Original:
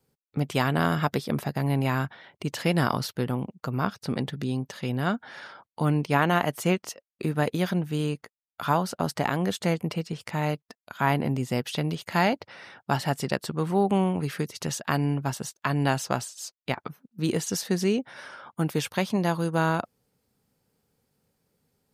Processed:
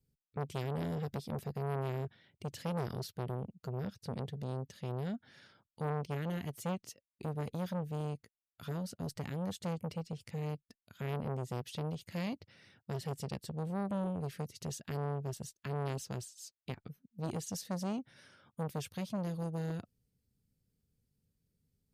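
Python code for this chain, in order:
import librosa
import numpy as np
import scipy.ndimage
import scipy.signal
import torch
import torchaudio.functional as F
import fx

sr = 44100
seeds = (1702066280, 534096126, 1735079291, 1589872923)

y = fx.tone_stack(x, sr, knobs='10-0-1')
y = fx.transformer_sat(y, sr, knee_hz=810.0)
y = y * librosa.db_to_amplitude(9.0)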